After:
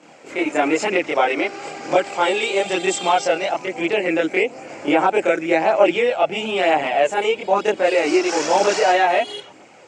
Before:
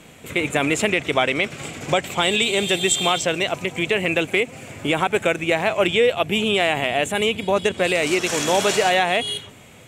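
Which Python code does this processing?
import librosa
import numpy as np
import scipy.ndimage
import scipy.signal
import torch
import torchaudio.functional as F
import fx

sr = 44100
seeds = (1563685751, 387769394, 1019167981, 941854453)

y = fx.chorus_voices(x, sr, voices=2, hz=0.52, base_ms=26, depth_ms=1.6, mix_pct=60)
y = fx.dmg_buzz(y, sr, base_hz=400.0, harmonics=12, level_db=-43.0, tilt_db=-5, odd_only=False, at=(1.41, 3.47), fade=0.02)
y = fx.cabinet(y, sr, low_hz=280.0, low_slope=12, high_hz=7000.0, hz=(320.0, 550.0, 820.0, 1400.0, 3500.0, 5000.0), db=(8, 6, 9, 3, -9, 7))
y = y * librosa.db_to_amplitude(1.5)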